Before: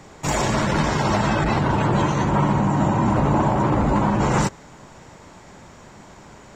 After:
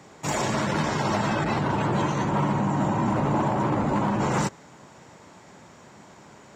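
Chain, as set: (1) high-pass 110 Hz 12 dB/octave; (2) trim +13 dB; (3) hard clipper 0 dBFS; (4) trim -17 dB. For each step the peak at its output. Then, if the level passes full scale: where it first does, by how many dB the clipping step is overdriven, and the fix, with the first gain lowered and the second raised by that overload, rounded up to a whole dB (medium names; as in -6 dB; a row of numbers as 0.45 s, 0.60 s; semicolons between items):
-8.0 dBFS, +5.0 dBFS, 0.0 dBFS, -17.0 dBFS; step 2, 5.0 dB; step 2 +8 dB, step 4 -12 dB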